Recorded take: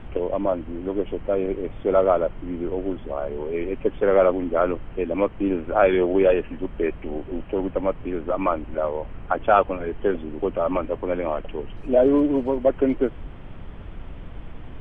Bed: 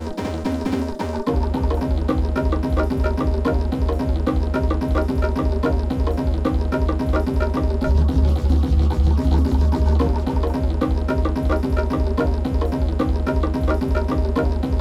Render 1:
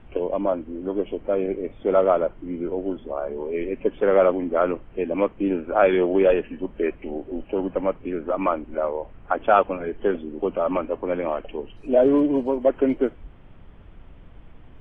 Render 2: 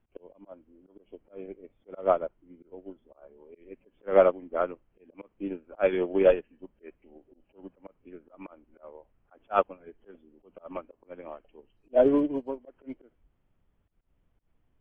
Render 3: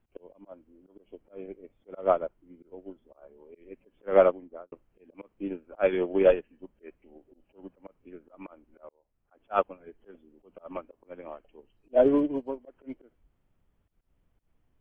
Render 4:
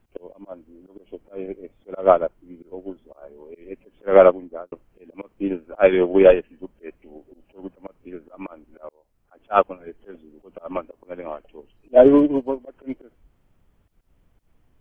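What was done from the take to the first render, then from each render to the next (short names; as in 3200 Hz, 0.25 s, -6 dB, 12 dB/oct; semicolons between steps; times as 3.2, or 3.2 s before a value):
noise print and reduce 9 dB
auto swell 0.115 s; upward expander 2.5:1, over -30 dBFS
4.26–4.72 studio fade out; 8.89–9.71 fade in linear
gain +9.5 dB; limiter -1 dBFS, peak gain reduction 3 dB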